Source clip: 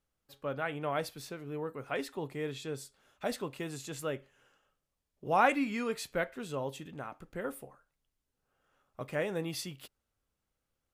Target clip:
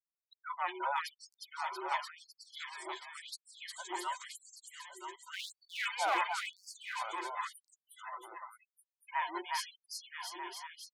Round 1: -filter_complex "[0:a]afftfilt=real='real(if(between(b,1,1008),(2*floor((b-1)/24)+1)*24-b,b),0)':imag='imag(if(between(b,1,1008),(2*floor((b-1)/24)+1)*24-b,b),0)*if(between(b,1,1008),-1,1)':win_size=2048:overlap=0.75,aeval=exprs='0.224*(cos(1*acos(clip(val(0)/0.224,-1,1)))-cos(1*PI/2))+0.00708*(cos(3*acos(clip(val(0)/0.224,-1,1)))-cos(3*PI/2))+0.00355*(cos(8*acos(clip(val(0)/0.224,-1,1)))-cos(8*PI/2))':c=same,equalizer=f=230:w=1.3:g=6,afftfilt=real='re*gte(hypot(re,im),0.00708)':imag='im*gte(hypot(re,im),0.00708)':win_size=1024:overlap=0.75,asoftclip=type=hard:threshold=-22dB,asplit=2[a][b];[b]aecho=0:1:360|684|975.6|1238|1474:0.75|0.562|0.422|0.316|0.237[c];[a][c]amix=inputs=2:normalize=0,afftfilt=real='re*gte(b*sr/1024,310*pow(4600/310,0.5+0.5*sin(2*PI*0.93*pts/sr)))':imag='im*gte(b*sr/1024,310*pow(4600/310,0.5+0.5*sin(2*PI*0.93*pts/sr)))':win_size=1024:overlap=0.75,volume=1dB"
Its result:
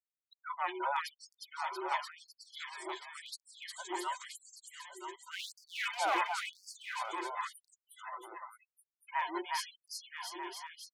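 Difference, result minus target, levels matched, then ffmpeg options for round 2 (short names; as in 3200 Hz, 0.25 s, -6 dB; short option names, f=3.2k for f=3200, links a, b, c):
250 Hz band +4.0 dB
-filter_complex "[0:a]afftfilt=real='real(if(between(b,1,1008),(2*floor((b-1)/24)+1)*24-b,b),0)':imag='imag(if(between(b,1,1008),(2*floor((b-1)/24)+1)*24-b,b),0)*if(between(b,1,1008),-1,1)':win_size=2048:overlap=0.75,aeval=exprs='0.224*(cos(1*acos(clip(val(0)/0.224,-1,1)))-cos(1*PI/2))+0.00708*(cos(3*acos(clip(val(0)/0.224,-1,1)))-cos(3*PI/2))+0.00355*(cos(8*acos(clip(val(0)/0.224,-1,1)))-cos(8*PI/2))':c=same,equalizer=f=230:w=1.3:g=-4,afftfilt=real='re*gte(hypot(re,im),0.00708)':imag='im*gte(hypot(re,im),0.00708)':win_size=1024:overlap=0.75,asoftclip=type=hard:threshold=-22dB,asplit=2[a][b];[b]aecho=0:1:360|684|975.6|1238|1474:0.75|0.562|0.422|0.316|0.237[c];[a][c]amix=inputs=2:normalize=0,afftfilt=real='re*gte(b*sr/1024,310*pow(4600/310,0.5+0.5*sin(2*PI*0.93*pts/sr)))':imag='im*gte(b*sr/1024,310*pow(4600/310,0.5+0.5*sin(2*PI*0.93*pts/sr)))':win_size=1024:overlap=0.75,volume=1dB"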